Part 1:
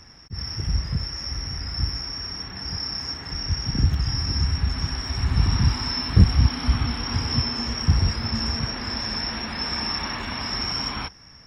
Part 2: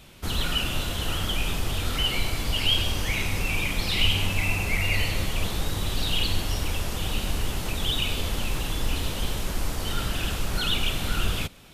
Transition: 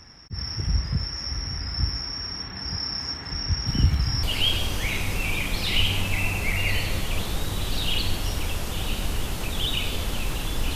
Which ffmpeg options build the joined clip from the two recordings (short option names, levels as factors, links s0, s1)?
-filter_complex "[1:a]asplit=2[s0][s1];[0:a]apad=whole_dur=10.75,atrim=end=10.75,atrim=end=4.232[s2];[s1]atrim=start=2.478:end=9[s3];[s0]atrim=start=1.92:end=2.48,asetpts=PTS-STARTPTS,volume=0.178,afade=t=in:d=0.004:c=hsin,afade=t=out:st=0.556:d=0.004:c=hsin,adelay=3670[s4];[s2][s3]acrossfade=d=0.004:c1=hsin:c2=hsin[s5];[s5][s4]amix=inputs=2:normalize=0"